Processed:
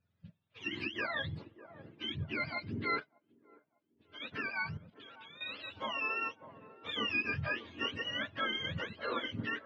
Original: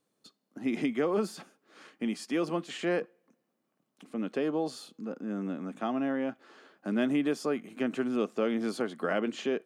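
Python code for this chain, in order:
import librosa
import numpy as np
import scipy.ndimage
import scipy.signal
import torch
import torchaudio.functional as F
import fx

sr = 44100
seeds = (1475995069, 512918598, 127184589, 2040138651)

y = fx.octave_mirror(x, sr, pivot_hz=850.0)
y = fx.level_steps(y, sr, step_db=17, at=(4.77, 5.41))
y = fx.doubler(y, sr, ms=25.0, db=-5.0, at=(7.23, 7.91))
y = fx.echo_wet_bandpass(y, sr, ms=600, feedback_pct=52, hz=510.0, wet_db=-12.0)
y = fx.upward_expand(y, sr, threshold_db=-57.0, expansion=1.5, at=(2.99, 4.2), fade=0.02)
y = y * librosa.db_to_amplitude(-3.5)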